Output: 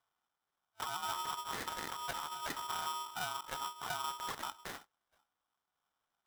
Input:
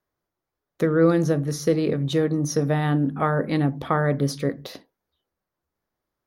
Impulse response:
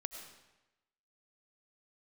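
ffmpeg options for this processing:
-filter_complex "[0:a]highpass=f=130:p=1,afftfilt=real='re*(1-between(b*sr/4096,210,1200))':imag='im*(1-between(b*sr/4096,210,1200))':win_size=4096:overlap=0.75,acrossover=split=340 5300:gain=0.0794 1 0.0708[a][b][c];[a][b][c]amix=inputs=3:normalize=0,acrossover=split=290[d][e];[e]acompressor=threshold=-43dB:ratio=20[f];[d][f]amix=inputs=2:normalize=0,acrusher=samples=27:mix=1:aa=0.000001,asoftclip=type=hard:threshold=-36dB,aeval=exprs='val(0)*sgn(sin(2*PI*1100*n/s))':c=same,volume=5dB"

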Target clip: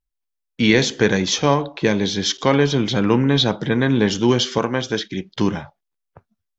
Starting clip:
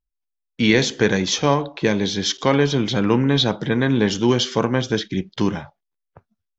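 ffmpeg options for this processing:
-filter_complex "[0:a]asettb=1/sr,asplit=3[a][b][c];[a]atrim=end=4.584[d];[b]atrim=start=4.58:end=5.31,asetpts=PTS-STARTPTS,afade=t=in:d=0.004:c=qsin,afade=t=out:st=0.726:d=0.004:c=qsin,lowshelf=f=250:g=-7.5[e];[c]atrim=start=5.306[f];[d][e]acrossfade=d=0.004:c1=hsin:c2=qsin[g];[g][f]acrossfade=d=0.004:c1=qsin:c2=hsin,volume=1dB"

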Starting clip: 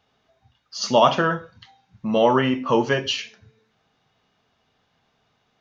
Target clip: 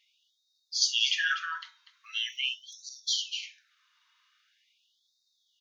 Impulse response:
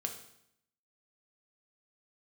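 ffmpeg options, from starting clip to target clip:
-af "aecho=1:1:244:0.237,asubboost=boost=11.5:cutoff=230,afftfilt=real='re*gte(b*sr/1024,880*pow(3600/880,0.5+0.5*sin(2*PI*0.43*pts/sr)))':imag='im*gte(b*sr/1024,880*pow(3600/880,0.5+0.5*sin(2*PI*0.43*pts/sr)))':win_size=1024:overlap=0.75,volume=2.5dB"

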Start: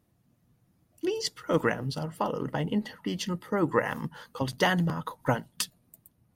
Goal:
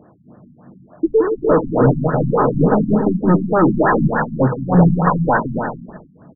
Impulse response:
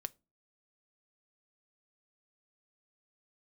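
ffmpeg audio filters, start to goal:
-filter_complex "[0:a]asplit=2[a][b];[b]highpass=f=720:p=1,volume=34dB,asoftclip=type=tanh:threshold=-10dB[c];[a][c]amix=inputs=2:normalize=0,lowpass=f=1.5k:p=1,volume=-6dB,asplit=2[d][e];[e]aecho=0:1:170|280.5|352.3|399|429.4:0.631|0.398|0.251|0.158|0.1[f];[d][f]amix=inputs=2:normalize=0,acrossover=split=690[g][h];[g]aeval=exprs='val(0)*(1-0.5/2+0.5/2*cos(2*PI*2.7*n/s))':c=same[i];[h]aeval=exprs='val(0)*(1-0.5/2-0.5/2*cos(2*PI*2.7*n/s))':c=same[j];[i][j]amix=inputs=2:normalize=0,asplit=2[k][l];[1:a]atrim=start_sample=2205[m];[l][m]afir=irnorm=-1:irlink=0,volume=8.5dB[n];[k][n]amix=inputs=2:normalize=0,afftfilt=real='re*lt(b*sr/1024,260*pow(1900/260,0.5+0.5*sin(2*PI*3.4*pts/sr)))':imag='im*lt(b*sr/1024,260*pow(1900/260,0.5+0.5*sin(2*PI*3.4*pts/sr)))':win_size=1024:overlap=0.75,volume=-2.5dB"

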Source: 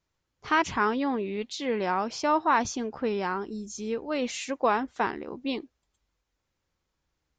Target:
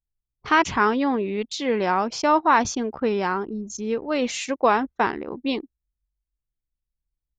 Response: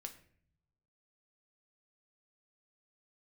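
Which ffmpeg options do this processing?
-af "anlmdn=0.251,volume=5.5dB"

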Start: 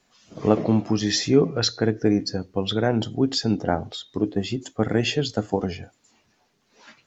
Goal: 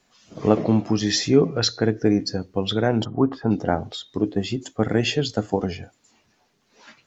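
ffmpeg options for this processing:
-filter_complex "[0:a]asplit=3[a][b][c];[a]afade=t=out:st=3.04:d=0.02[d];[b]lowpass=f=1.1k:t=q:w=4.9,afade=t=in:st=3.04:d=0.02,afade=t=out:st=3.5:d=0.02[e];[c]afade=t=in:st=3.5:d=0.02[f];[d][e][f]amix=inputs=3:normalize=0,volume=1dB"

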